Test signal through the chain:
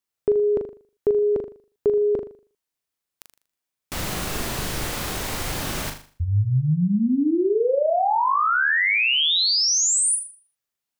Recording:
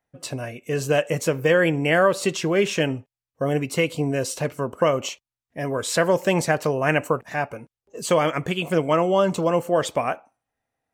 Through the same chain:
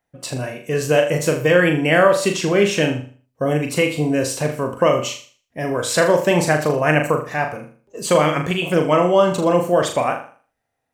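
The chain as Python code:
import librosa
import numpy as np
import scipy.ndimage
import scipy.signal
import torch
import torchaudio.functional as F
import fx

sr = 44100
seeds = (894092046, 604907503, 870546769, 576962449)

y = fx.room_flutter(x, sr, wall_m=6.8, rt60_s=0.42)
y = F.gain(torch.from_numpy(y), 3.0).numpy()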